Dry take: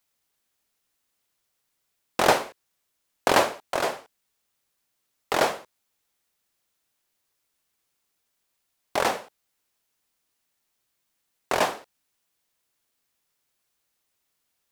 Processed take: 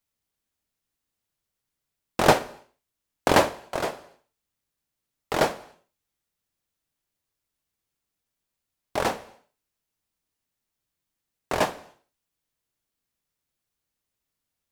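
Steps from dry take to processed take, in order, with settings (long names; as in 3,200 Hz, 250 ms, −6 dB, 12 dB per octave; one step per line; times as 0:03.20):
low-shelf EQ 250 Hz +11.5 dB
reverb whose tail is shaped and stops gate 310 ms falling, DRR 11 dB
expander for the loud parts 1.5 to 1, over −31 dBFS
level +1 dB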